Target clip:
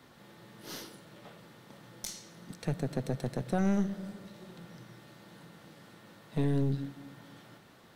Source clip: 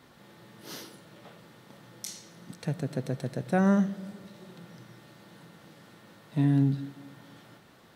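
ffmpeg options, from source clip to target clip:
ffmpeg -i in.wav -filter_complex "[0:a]acrossover=split=130|3000[link_01][link_02][link_03];[link_02]acompressor=threshold=-26dB:ratio=6[link_04];[link_01][link_04][link_03]amix=inputs=3:normalize=0,aeval=exprs='(tanh(15.8*val(0)+0.65)-tanh(0.65))/15.8':channel_layout=same,volume=2.5dB" out.wav

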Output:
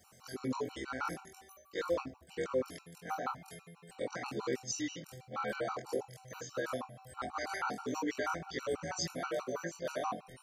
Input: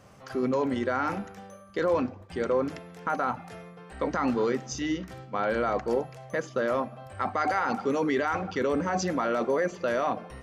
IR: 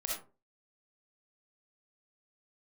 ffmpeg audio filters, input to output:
-af "afftfilt=real='re':imag='-im':win_size=2048:overlap=0.75,crystalizer=i=4:c=0,afftfilt=real='re*gt(sin(2*PI*6.2*pts/sr)*(1-2*mod(floor(b*sr/1024/760),2)),0)':imag='im*gt(sin(2*PI*6.2*pts/sr)*(1-2*mod(floor(b*sr/1024/760),2)),0)':win_size=1024:overlap=0.75,volume=-4dB"

